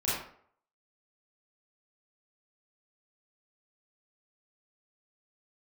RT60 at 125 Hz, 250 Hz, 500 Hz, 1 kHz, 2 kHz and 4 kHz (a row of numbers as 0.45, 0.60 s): 0.50, 0.50, 0.60, 0.60, 0.45, 0.35 s